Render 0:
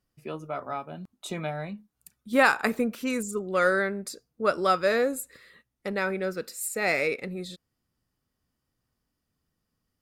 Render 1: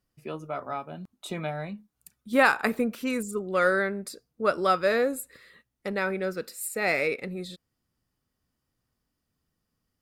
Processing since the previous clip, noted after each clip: dynamic bell 6.5 kHz, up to -6 dB, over -52 dBFS, Q 2.2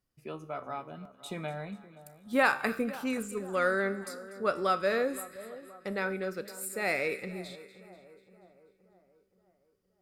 feedback comb 65 Hz, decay 0.63 s, harmonics all, mix 50%; two-band feedback delay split 1.2 kHz, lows 522 ms, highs 243 ms, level -16 dB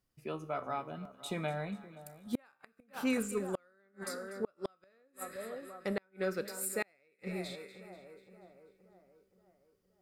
inverted gate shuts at -23 dBFS, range -40 dB; trim +1 dB

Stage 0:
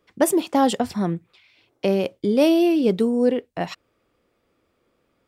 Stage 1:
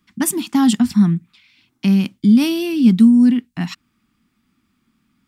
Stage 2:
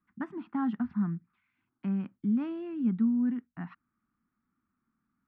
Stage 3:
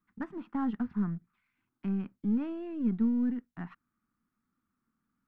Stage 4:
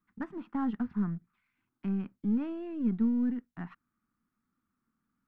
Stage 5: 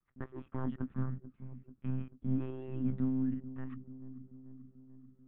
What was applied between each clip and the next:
FFT filter 110 Hz 0 dB, 230 Hz +11 dB, 520 Hz -27 dB, 810 Hz -8 dB, 1.2 kHz -2 dB, 7.2 kHz +3 dB; trim +3 dB
four-pole ladder low-pass 1.7 kHz, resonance 45%; trim -7.5 dB
partial rectifier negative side -3 dB
no audible change
monotone LPC vocoder at 8 kHz 130 Hz; feedback echo behind a low-pass 438 ms, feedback 63%, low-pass 740 Hz, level -13 dB; trim -4.5 dB

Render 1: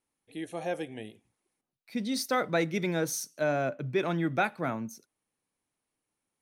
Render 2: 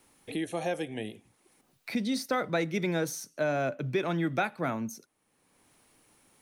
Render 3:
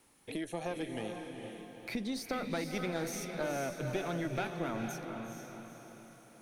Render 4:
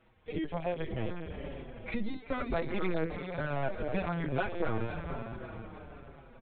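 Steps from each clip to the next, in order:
three bands compressed up and down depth 70%
valve stage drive 21 dB, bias 0.7; compression 2:1, threshold -38 dBFS, peak gain reduction 6.5 dB; echo that smears into a reverb 460 ms, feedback 48%, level -5 dB; trim +1.5 dB
distance through air 220 m; LPC vocoder at 8 kHz pitch kept; endless flanger 5.7 ms -1.1 Hz; trim +8 dB

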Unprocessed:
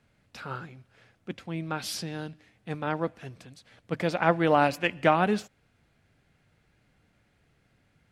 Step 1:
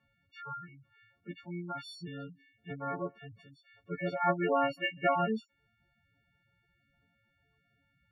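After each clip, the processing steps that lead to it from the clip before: partials quantised in pitch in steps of 4 st; spectral gate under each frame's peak -10 dB strong; distance through air 460 m; trim -5 dB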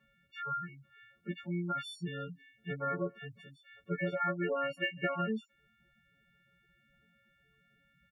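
comb 5.1 ms, depth 77%; compression 12:1, threshold -31 dBFS, peak gain reduction 10.5 dB; trim +1.5 dB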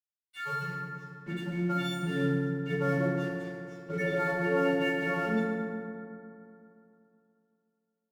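peak limiter -29 dBFS, peak gain reduction 8 dB; crossover distortion -55.5 dBFS; FDN reverb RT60 2.8 s, high-frequency decay 0.4×, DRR -5.5 dB; trim +3 dB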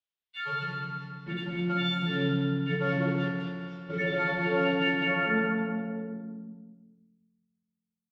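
low-pass sweep 3.4 kHz -> 100 Hz, 5.01–6.88 s; feedback delay 203 ms, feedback 39%, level -7.5 dB

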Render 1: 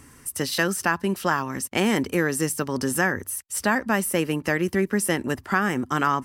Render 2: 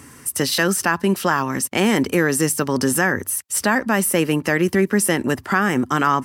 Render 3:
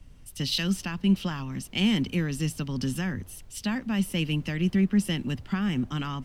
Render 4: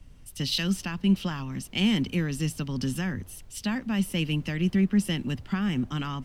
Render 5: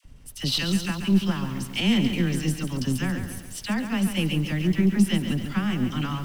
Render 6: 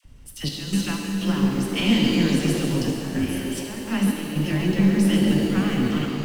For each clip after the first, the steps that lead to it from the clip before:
high-pass 91 Hz; in parallel at +2 dB: peak limiter -17 dBFS, peak gain reduction 10 dB
FFT filter 190 Hz 0 dB, 420 Hz -16 dB, 1.7 kHz -16 dB, 3 kHz 0 dB, 9.2 kHz -18 dB; added noise brown -44 dBFS; three bands expanded up and down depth 40%; trim -2 dB
no audible change
partial rectifier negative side -3 dB; phase dispersion lows, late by 43 ms, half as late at 880 Hz; bit-crushed delay 139 ms, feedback 55%, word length 8-bit, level -8 dB; trim +3.5 dB
repeats whose band climbs or falls 290 ms, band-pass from 330 Hz, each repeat 0.7 oct, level -0.5 dB; trance gate "xx.x.xxxxxxx." 62 bpm -12 dB; pitch-shifted reverb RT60 2.4 s, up +7 st, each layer -8 dB, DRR 1.5 dB

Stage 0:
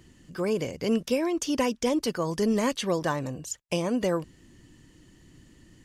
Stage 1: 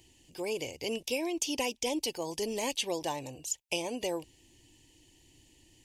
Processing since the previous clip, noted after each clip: FFT filter 110 Hz 0 dB, 190 Hz -10 dB, 320 Hz +2 dB, 590 Hz +1 dB, 870 Hz +8 dB, 1.3 kHz -16 dB, 2.5 kHz +11 dB, 4.3 kHz +8 dB, 11 kHz +11 dB; trim -8.5 dB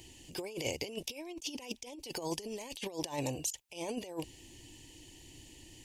compressor with a negative ratio -39 dBFS, ratio -0.5; trim +1 dB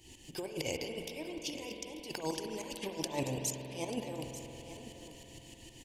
tremolo saw up 6.5 Hz, depth 80%; delay 889 ms -13.5 dB; on a send at -4 dB: reverberation RT60 4.2 s, pre-delay 46 ms; on the sum: trim +3.5 dB

